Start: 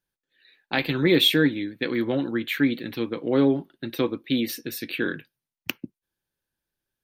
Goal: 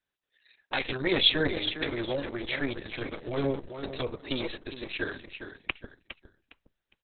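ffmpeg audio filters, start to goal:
-filter_complex "[0:a]highpass=f=54:p=1,aecho=1:1:409|818|1227:0.355|0.0993|0.0278,acrossover=split=300|540|5400[a][b][c][d];[a]aeval=exprs='abs(val(0))':c=same[e];[e][b][c][d]amix=inputs=4:normalize=0,volume=-2.5dB" -ar 48000 -c:a libopus -b:a 6k

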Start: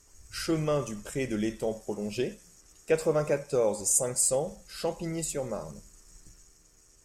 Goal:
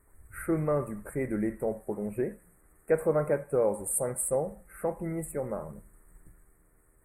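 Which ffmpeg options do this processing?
-af "asuperstop=centerf=4500:order=12:qfactor=0.66"

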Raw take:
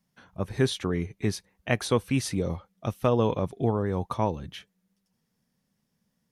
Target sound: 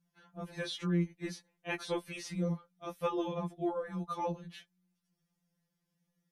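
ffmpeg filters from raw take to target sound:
-filter_complex "[0:a]acrossover=split=5600[a][b];[b]acompressor=threshold=-46dB:ratio=4:attack=1:release=60[c];[a][c]amix=inputs=2:normalize=0,afftfilt=real='re*2.83*eq(mod(b,8),0)':imag='im*2.83*eq(mod(b,8),0)':win_size=2048:overlap=0.75,volume=-5dB"

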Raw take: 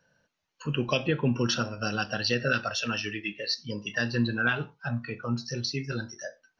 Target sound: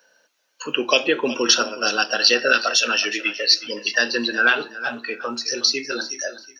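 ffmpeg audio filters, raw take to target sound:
-af "highpass=f=310:w=0.5412,highpass=f=310:w=1.3066,highshelf=f=4k:g=9.5,aecho=1:1:369|738|1107:0.178|0.0445|0.0111,volume=8.5dB"

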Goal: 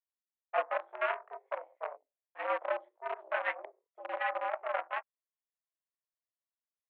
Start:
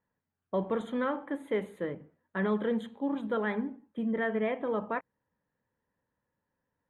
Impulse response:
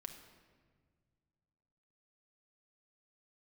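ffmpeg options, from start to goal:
-filter_complex "[0:a]afwtdn=0.0141,asettb=1/sr,asplit=3[a][b][c];[a]atrim=end=1.964[d];[b]atrim=start=1.96:end=2.5,asetpts=PTS-STARTPTS,afade=t=in:d=0.004:c=qsin,afade=t=out:st=0.536:d=0.004:c=qsin,equalizer=f=1.4k:t=o:w=2:g=-11[e];[c]atrim=start=2.496[f];[d][e]acrossfade=d=0.004:c1=hsin:c2=qsin[g];[g][f]acrossfade=d=0.004:c1=qsin:c2=hsin,flanger=delay=19:depth=6:speed=2,aeval=exprs='0.112*(cos(1*acos(clip(val(0)/0.112,-1,1)))-cos(1*PI/2))+0.002*(cos(2*acos(clip(val(0)/0.112,-1,1)))-cos(2*PI/2))+0.0141*(cos(3*acos(clip(val(0)/0.112,-1,1)))-cos(3*PI/2))+0.00282*(cos(7*acos(clip(val(0)/0.112,-1,1)))-cos(7*PI/2))+0.00794*(cos(8*acos(clip(val(0)/0.112,-1,1)))-cos(8*PI/2))':c=same,asplit=2[h][i];[i]acrusher=bits=4:mix=0:aa=0.000001,volume=-7dB[j];[h][j]amix=inputs=2:normalize=0,highpass=f=470:t=q:w=0.5412,highpass=f=470:t=q:w=1.307,lowpass=f=2.6k:t=q:w=0.5176,lowpass=f=2.6k:t=q:w=0.7071,lowpass=f=2.6k:t=q:w=1.932,afreqshift=120,volume=3.5dB"

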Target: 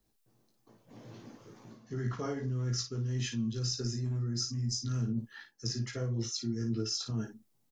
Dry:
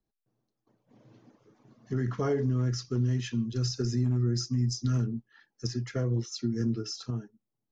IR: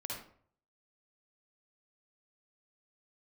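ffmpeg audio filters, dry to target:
-af "highshelf=f=3.7k:g=7,areverse,acompressor=threshold=-41dB:ratio=5,areverse,aecho=1:1:18|55:0.668|0.447,volume=6.5dB"

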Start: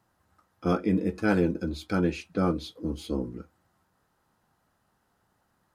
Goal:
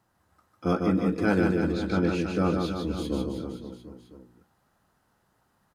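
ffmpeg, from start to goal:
-filter_complex "[0:a]asettb=1/sr,asplit=3[a][b][c];[a]atrim=end=1.474[d];[b]atrim=start=1.47:end=2.08,asetpts=PTS-STARTPTS,afade=t=in:d=0.004:c=qsin,afade=t=out:st=0.606:d=0.004:c=qsin,lowpass=6.9k[e];[c]atrim=start=2.076[f];[d][e]acrossfade=d=0.004:c1=hsin:c2=qsin[g];[g][f]acrossfade=d=0.004:c1=qsin:c2=hsin,aecho=1:1:150|322.5|520.9|749|1011:0.631|0.398|0.251|0.158|0.1"

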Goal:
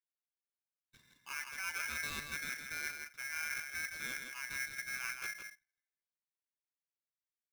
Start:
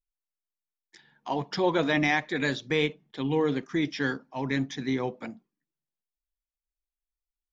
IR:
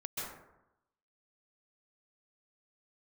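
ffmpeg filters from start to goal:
-af "equalizer=f=1.2k:t=o:w=2.7:g=-11.5,areverse,acompressor=threshold=-40dB:ratio=6,areverse,aeval=exprs='(tanh(56.2*val(0)+0.55)-tanh(0.55))/56.2':c=same,highpass=180,lowpass=2k,aecho=1:1:163:0.501,aeval=exprs='val(0)*sgn(sin(2*PI*1900*n/s))':c=same,volume=5dB"

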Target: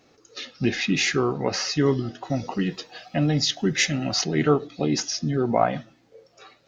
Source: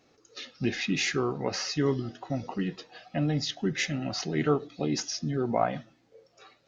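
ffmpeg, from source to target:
-filter_complex "[0:a]asettb=1/sr,asplit=3[a][b][c];[a]atrim=end=2.234[d];[b]atrim=start=2.23:end=4.24,asetpts=PTS-STARTPTS,afade=t=in:d=0.004:c=qsin,afade=t=out:st=2.006:d=0.004:c=qsin,highshelf=f=4.9k:g=8.5[e];[c]atrim=start=4.236[f];[d][e]acrossfade=d=0.004:c1=hsin:c2=qsin[g];[g][f]acrossfade=d=0.004:c1=qsin:c2=hsin,volume=5.5dB"

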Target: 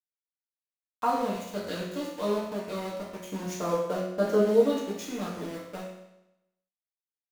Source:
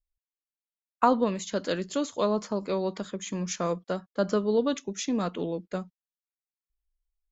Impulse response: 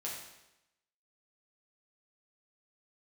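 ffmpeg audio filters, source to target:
-filter_complex "[0:a]asettb=1/sr,asplit=3[a][b][c];[a]atrim=end=3.184[d];[b]atrim=start=3.18:end=4.98,asetpts=PTS-STARTPTS,afade=t=in:d=0.004:c=qsin,afade=t=out:st=1.796:d=0.004:c=qsin,equalizer=f=490:t=o:w=2.7:g=6[e];[c]atrim=start=4.976[f];[d][e]acrossfade=d=0.004:c1=hsin:c2=qsin[g];[g][f]acrossfade=d=0.004:c1=qsin:c2=hsin,aeval=exprs='val(0)*gte(abs(val(0)),0.0266)':c=same,flanger=delay=8.9:depth=2.3:regen=68:speed=1.4:shape=triangular[h];[1:a]atrim=start_sample=2205[i];[h][i]afir=irnorm=-1:irlink=0"

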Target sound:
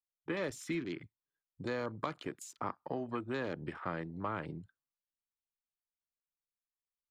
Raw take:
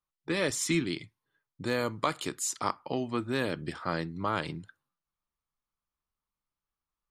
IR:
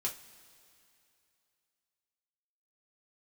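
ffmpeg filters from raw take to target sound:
-filter_complex "[0:a]afwtdn=0.00794,acrossover=split=370|1900[a][b][c];[a]acompressor=threshold=-39dB:ratio=4[d];[b]acompressor=threshold=-34dB:ratio=4[e];[c]acompressor=threshold=-49dB:ratio=4[f];[d][e][f]amix=inputs=3:normalize=0,volume=-2dB"

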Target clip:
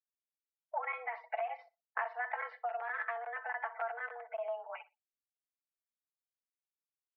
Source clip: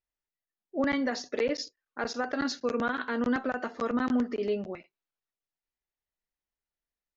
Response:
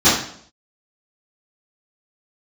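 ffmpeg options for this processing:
-filter_complex "[0:a]afftfilt=real='re*gte(hypot(re,im),0.00316)':imag='im*gte(hypot(re,im),0.00316)':win_size=1024:overlap=0.75,aecho=1:1:4.6:0.78,acompressor=threshold=-48dB:ratio=10,aeval=exprs='0.0251*(cos(1*acos(clip(val(0)/0.0251,-1,1)))-cos(1*PI/2))+0.00251*(cos(2*acos(clip(val(0)/0.0251,-1,1)))-cos(2*PI/2))+0.0002*(cos(6*acos(clip(val(0)/0.0251,-1,1)))-cos(6*PI/2))':c=same,asplit=2[a][b];[b]aecho=0:1:61|122:0.1|0.023[c];[a][c]amix=inputs=2:normalize=0,highpass=f=440:t=q:w=0.5412,highpass=f=440:t=q:w=1.307,lowpass=f=2.2k:t=q:w=0.5176,lowpass=f=2.2k:t=q:w=0.7071,lowpass=f=2.2k:t=q:w=1.932,afreqshift=230,volume=16dB"

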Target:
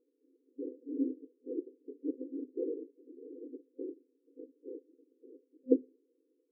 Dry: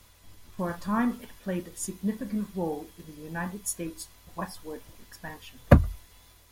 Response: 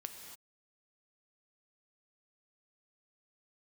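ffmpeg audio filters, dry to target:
-af "afftfilt=real='hypot(re,im)*cos(2*PI*random(0))':imag='hypot(re,im)*sin(2*PI*random(1))':win_size=512:overlap=0.75,afftfilt=real='re*between(b*sr/4096,250,520)':imag='im*between(b*sr/4096,250,520)':win_size=4096:overlap=0.75,volume=2.5dB"

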